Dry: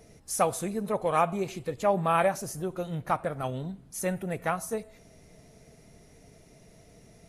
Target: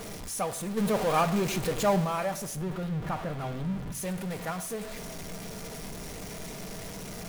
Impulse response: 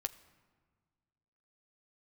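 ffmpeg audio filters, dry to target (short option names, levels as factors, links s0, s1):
-filter_complex "[0:a]aeval=exprs='val(0)+0.5*0.0531*sgn(val(0))':c=same,asplit=3[s0][s1][s2];[s0]afade=t=out:st=0.76:d=0.02[s3];[s1]acontrast=80,afade=t=in:st=0.76:d=0.02,afade=t=out:st=2.04:d=0.02[s4];[s2]afade=t=in:st=2.04:d=0.02[s5];[s3][s4][s5]amix=inputs=3:normalize=0,asettb=1/sr,asplit=3[s6][s7][s8];[s6]atrim=end=2.564[s9];[s7]atrim=start=2.56:end=3.95,asetpts=PTS-STARTPTS,afade=t=in:d=0.004:c=qsin,afade=t=out:st=1.386:d=0.004:c=qsin,bass=f=250:g=6,treble=f=4000:g=-8[s10];[s8]atrim=start=3.946[s11];[s9][s10]acrossfade=d=0.004:c1=hsin:c2=qsin[s12];[s12][s11]acrossfade=d=0.004:c1=qsin:c2=hsin[s13];[1:a]atrim=start_sample=2205,asetrate=79380,aresample=44100[s14];[s13][s14]afir=irnorm=-1:irlink=0,volume=0.708"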